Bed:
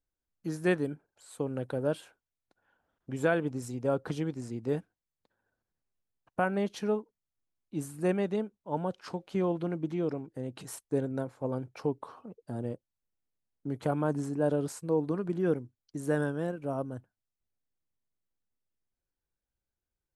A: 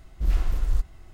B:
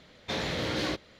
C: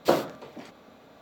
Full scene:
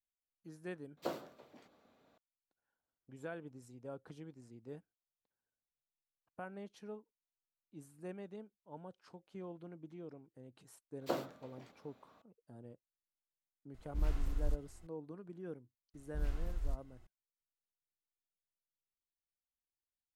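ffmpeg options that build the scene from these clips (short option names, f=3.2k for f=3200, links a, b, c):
-filter_complex "[3:a]asplit=2[a][b];[1:a]asplit=2[c][d];[0:a]volume=-18dB[e];[a]asplit=5[f][g][h][i][j];[g]adelay=168,afreqshift=40,volume=-21.5dB[k];[h]adelay=336,afreqshift=80,volume=-27.2dB[l];[i]adelay=504,afreqshift=120,volume=-32.9dB[m];[j]adelay=672,afreqshift=160,volume=-38.5dB[n];[f][k][l][m][n]amix=inputs=5:normalize=0[o];[e]asplit=2[p][q];[p]atrim=end=0.974[r];[o]atrim=end=1.21,asetpts=PTS-STARTPTS,volume=-17.5dB[s];[q]atrim=start=2.176[t];[b]atrim=end=1.21,asetpts=PTS-STARTPTS,volume=-14.5dB,afade=t=in:d=0.004:c=hsin,afade=t=out:st=1.206:d=0.004:c=hsin,adelay=11010[u];[c]atrim=end=1.13,asetpts=PTS-STARTPTS,volume=-11.5dB,afade=t=in:d=0.004:c=hsin,afade=t=out:st=1.126:d=0.004:c=hsin,adelay=13740[v];[d]atrim=end=1.13,asetpts=PTS-STARTPTS,volume=-14.5dB,afade=t=in:d=0.004:c=hsin,afade=t=out:st=1.126:d=0.004:c=hsin,adelay=15940[w];[r][s]acrossfade=d=0.004:c1=hsin:c2=hsin[x];[x][t]acrossfade=d=0.004:c1=hsin:c2=hsin[y];[y][u][v][w]amix=inputs=4:normalize=0"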